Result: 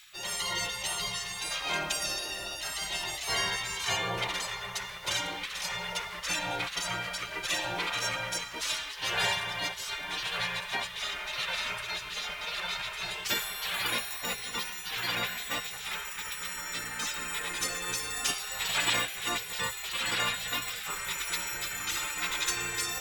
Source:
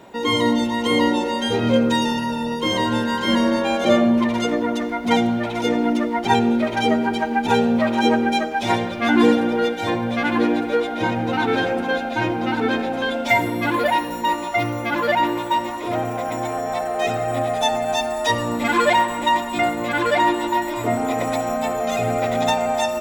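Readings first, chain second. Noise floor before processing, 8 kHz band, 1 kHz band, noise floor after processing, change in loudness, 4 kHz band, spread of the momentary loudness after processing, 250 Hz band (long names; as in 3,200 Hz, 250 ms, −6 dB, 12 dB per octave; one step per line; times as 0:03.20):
−27 dBFS, +3.0 dB, −16.5 dB, −41 dBFS, −11.0 dB, −3.0 dB, 6 LU, −28.0 dB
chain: gate on every frequency bin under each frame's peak −20 dB weak
tilt shelving filter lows −5 dB, about 1,200 Hz
reversed playback
upward compression, threshold −40 dBFS
reversed playback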